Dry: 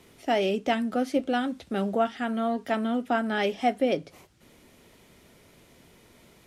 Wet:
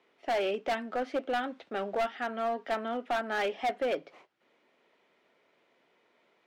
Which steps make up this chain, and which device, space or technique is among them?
walkie-talkie (band-pass 460–2700 Hz; hard clipper -25.5 dBFS, distortion -10 dB; gate -55 dBFS, range -8 dB)

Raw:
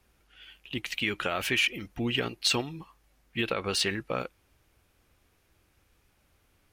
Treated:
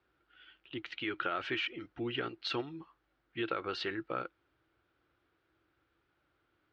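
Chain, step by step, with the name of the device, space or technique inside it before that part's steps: guitar cabinet (cabinet simulation 80–4000 Hz, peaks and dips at 86 Hz -7 dB, 210 Hz -10 dB, 330 Hz +9 dB, 1.4 kHz +9 dB, 2.5 kHz -4 dB); trim -8 dB

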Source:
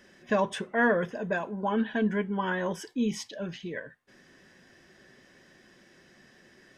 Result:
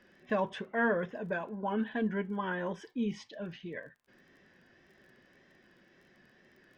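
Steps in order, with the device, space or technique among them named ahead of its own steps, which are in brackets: lo-fi chain (low-pass 3.7 kHz 12 dB/octave; wow and flutter; crackle 26 per s -50 dBFS); trim -5 dB

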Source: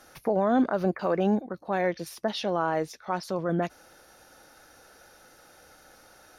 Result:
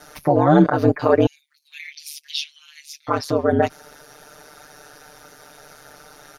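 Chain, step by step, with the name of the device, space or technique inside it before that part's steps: 1.26–3.07 s: Chebyshev high-pass 2.3 kHz, order 5; ring-modulated robot voice (ring modulator 73 Hz; comb 6.7 ms, depth 98%); trim +9 dB

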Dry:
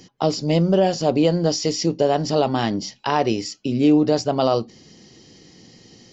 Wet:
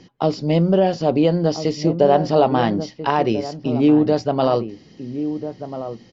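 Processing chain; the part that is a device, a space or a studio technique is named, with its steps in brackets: shout across a valley (distance through air 180 m; echo from a far wall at 230 m, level -10 dB); 1.74–3.11 s: dynamic bell 800 Hz, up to +4 dB, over -27 dBFS, Q 0.72; trim +1.5 dB

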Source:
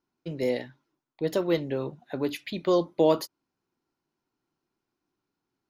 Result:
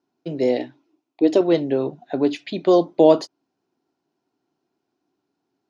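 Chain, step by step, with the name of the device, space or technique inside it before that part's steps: car door speaker (cabinet simulation 110–7000 Hz, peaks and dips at 280 Hz +6 dB, 400 Hz +5 dB, 700 Hz +9 dB, 1.2 kHz -3 dB, 2.1 kHz -3 dB); 0.57–1.41 s: graphic EQ with 31 bands 160 Hz -12 dB, 315 Hz +9 dB, 1.6 kHz -5 dB, 2.5 kHz +6 dB; trim +4 dB

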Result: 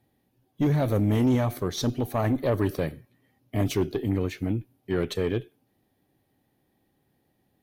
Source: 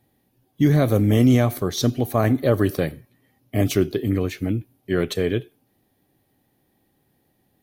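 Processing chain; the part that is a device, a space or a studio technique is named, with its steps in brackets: tube preamp driven hard (valve stage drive 14 dB, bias 0.35; treble shelf 6.8 kHz -5.5 dB); trim -2.5 dB

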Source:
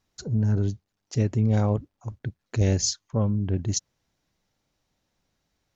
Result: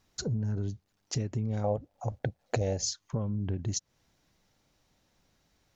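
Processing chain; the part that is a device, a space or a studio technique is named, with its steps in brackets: serial compression, peaks first (compression 5:1, threshold -30 dBFS, peak gain reduction 12.5 dB; compression 1.5:1, threshold -39 dBFS, peak gain reduction 4.5 dB); 1.64–2.84 s: high-order bell 630 Hz +12 dB 1 oct; trim +5 dB

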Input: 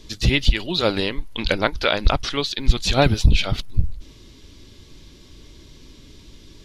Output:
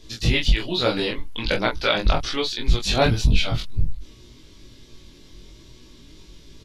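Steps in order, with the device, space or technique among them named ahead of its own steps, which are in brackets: double-tracked vocal (doubling 25 ms -3 dB; chorus 1.2 Hz, delay 16 ms, depth 3.7 ms)

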